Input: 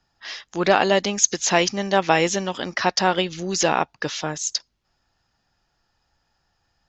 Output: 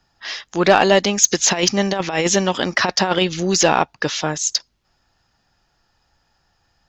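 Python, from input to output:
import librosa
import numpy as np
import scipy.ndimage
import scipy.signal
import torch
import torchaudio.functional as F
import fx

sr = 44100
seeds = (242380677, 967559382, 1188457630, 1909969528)

y = fx.over_compress(x, sr, threshold_db=-21.0, ratio=-0.5, at=(1.31, 3.57))
y = 10.0 ** (-6.0 / 20.0) * np.tanh(y / 10.0 ** (-6.0 / 20.0))
y = F.gain(torch.from_numpy(y), 5.5).numpy()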